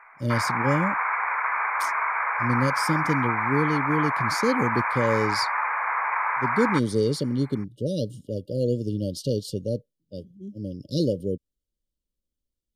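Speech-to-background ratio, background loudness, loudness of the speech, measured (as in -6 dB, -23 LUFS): -2.0 dB, -25.5 LUFS, -27.5 LUFS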